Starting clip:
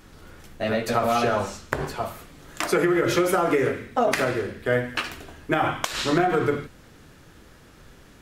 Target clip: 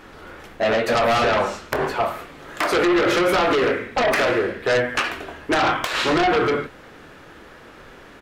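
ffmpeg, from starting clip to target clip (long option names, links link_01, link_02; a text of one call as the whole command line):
ffmpeg -i in.wav -filter_complex "[0:a]bass=frequency=250:gain=-12,treble=frequency=4000:gain=-13,asplit=2[link_01][link_02];[link_02]aeval=exprs='0.473*sin(PI/2*7.08*val(0)/0.473)':channel_layout=same,volume=-12dB[link_03];[link_01][link_03]amix=inputs=2:normalize=0,asplit=2[link_04][link_05];[link_05]adelay=26,volume=-13dB[link_06];[link_04][link_06]amix=inputs=2:normalize=0,volume=-1dB" out.wav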